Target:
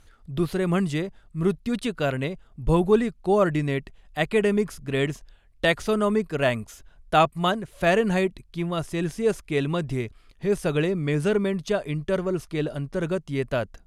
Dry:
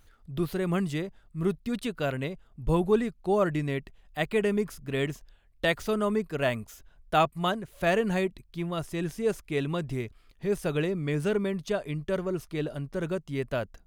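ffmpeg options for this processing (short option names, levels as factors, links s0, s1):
-af "lowpass=f=12000:w=0.5412,lowpass=f=12000:w=1.3066,volume=1.68"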